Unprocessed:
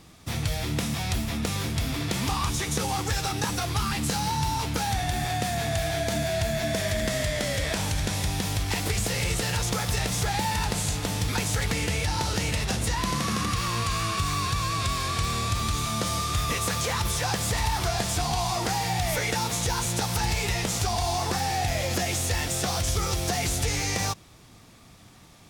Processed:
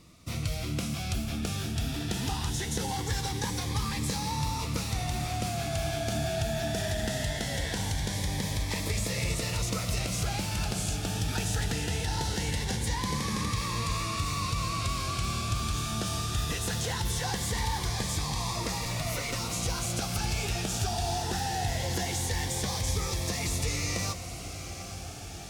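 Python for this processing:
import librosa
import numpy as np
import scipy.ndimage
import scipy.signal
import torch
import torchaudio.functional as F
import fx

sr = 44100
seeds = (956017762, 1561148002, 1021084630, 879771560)

y = fx.lower_of_two(x, sr, delay_ms=7.4, at=(18.85, 19.4))
y = fx.high_shelf(y, sr, hz=11000.0, db=-4.0)
y = fx.echo_diffused(y, sr, ms=833, feedback_pct=75, wet_db=-11.5)
y = fx.notch_cascade(y, sr, direction='rising', hz=0.21)
y = y * 10.0 ** (-3.5 / 20.0)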